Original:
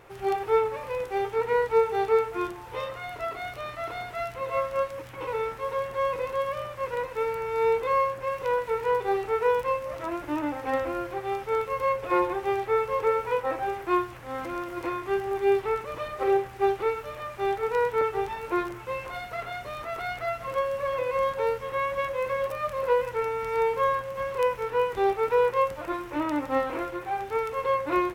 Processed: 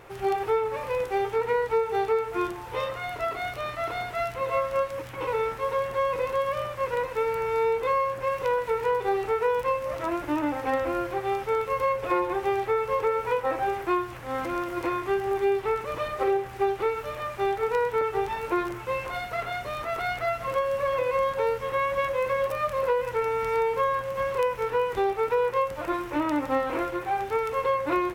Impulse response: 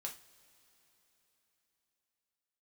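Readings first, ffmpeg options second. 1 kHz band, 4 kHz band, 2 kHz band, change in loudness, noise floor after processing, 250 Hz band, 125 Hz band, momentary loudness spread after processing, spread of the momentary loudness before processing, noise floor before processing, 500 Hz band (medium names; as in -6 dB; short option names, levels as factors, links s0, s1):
+1.0 dB, +2.0 dB, +1.5 dB, +0.5 dB, -38 dBFS, +1.5 dB, +2.5 dB, 5 LU, 9 LU, -41 dBFS, +0.5 dB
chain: -af "acompressor=threshold=0.0562:ratio=4,volume=1.5"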